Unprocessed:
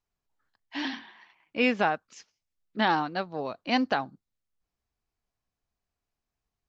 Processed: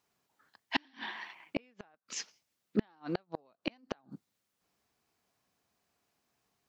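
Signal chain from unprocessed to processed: HPF 160 Hz 12 dB/oct; compressor 16:1, threshold -29 dBFS, peak gain reduction 11 dB; flipped gate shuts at -26 dBFS, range -40 dB; gain +10.5 dB

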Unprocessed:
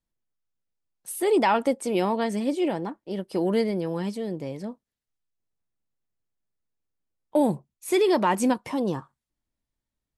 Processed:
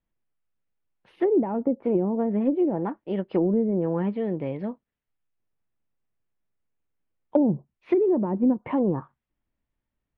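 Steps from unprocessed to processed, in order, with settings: inverse Chebyshev low-pass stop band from 7100 Hz, stop band 50 dB; treble ducked by the level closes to 360 Hz, closed at -20 dBFS; gain +3.5 dB

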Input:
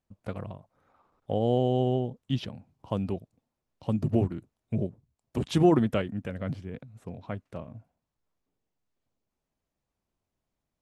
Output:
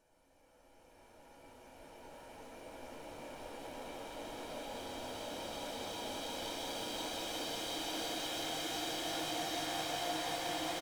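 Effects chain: spectral dilation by 60 ms; steep high-pass 330 Hz 36 dB/oct; comb 1.3 ms, depth 95%; tube stage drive 33 dB, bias 0.6; in parallel at -6.5 dB: Schmitt trigger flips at -41 dBFS; on the sum: Paulstretch 22×, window 0.50 s, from 5.14; swelling echo 0.177 s, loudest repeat 5, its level -11 dB; gain -6.5 dB

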